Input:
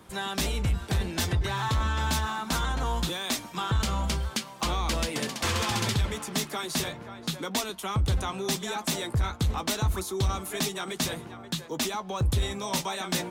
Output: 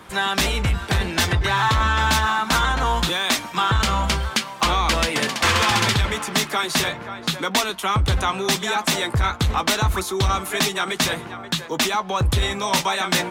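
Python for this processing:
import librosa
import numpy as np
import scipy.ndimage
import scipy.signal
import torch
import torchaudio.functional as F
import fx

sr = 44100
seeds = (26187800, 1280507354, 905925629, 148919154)

y = fx.peak_eq(x, sr, hz=1700.0, db=8.0, octaves=2.7)
y = F.gain(torch.from_numpy(y), 5.0).numpy()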